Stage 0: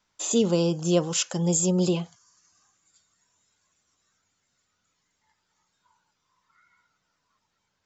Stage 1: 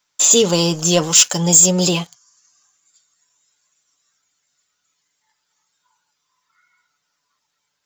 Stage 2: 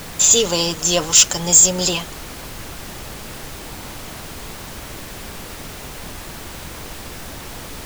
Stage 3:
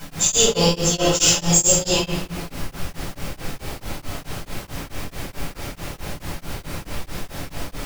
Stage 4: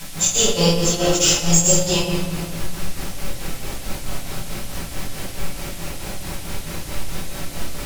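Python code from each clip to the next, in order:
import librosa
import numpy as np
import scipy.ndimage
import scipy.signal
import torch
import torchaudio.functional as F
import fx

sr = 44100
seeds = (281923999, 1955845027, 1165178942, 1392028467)

y1 = fx.tilt_eq(x, sr, slope=2.5)
y1 = y1 + 0.41 * np.pad(y1, (int(6.9 * sr / 1000.0), 0))[:len(y1)]
y1 = fx.leveller(y1, sr, passes=2)
y1 = y1 * librosa.db_to_amplitude(3.0)
y2 = fx.low_shelf(y1, sr, hz=360.0, db=-10.5)
y2 = fx.dmg_noise_colour(y2, sr, seeds[0], colour='pink', level_db=-33.0)
y3 = fx.room_shoebox(y2, sr, seeds[1], volume_m3=720.0, walls='mixed', distance_m=7.7)
y3 = y3 * np.abs(np.cos(np.pi * 4.6 * np.arange(len(y3)) / sr))
y3 = y3 * librosa.db_to_amplitude(-11.5)
y4 = fx.dmg_noise_band(y3, sr, seeds[2], low_hz=1900.0, high_hz=13000.0, level_db=-39.0)
y4 = fx.room_shoebox(y4, sr, seeds[3], volume_m3=1800.0, walls='mixed', distance_m=1.1)
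y4 = y4 * librosa.db_to_amplitude(-1.0)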